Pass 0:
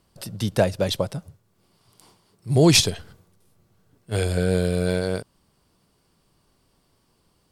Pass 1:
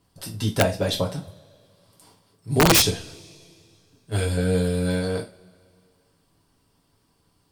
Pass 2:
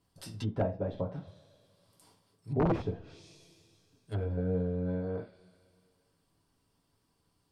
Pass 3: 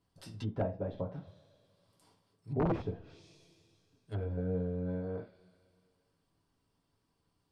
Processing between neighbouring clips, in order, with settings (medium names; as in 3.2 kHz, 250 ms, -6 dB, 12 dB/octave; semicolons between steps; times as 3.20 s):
harmonic-percussive split percussive +4 dB; two-slope reverb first 0.27 s, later 2.4 s, from -28 dB, DRR -2 dB; integer overflow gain 1.5 dB; trim -7 dB
de-esser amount 25%; low-pass that closes with the level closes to 860 Hz, closed at -21 dBFS; trim -9 dB
treble shelf 7.5 kHz -9 dB; trim -3 dB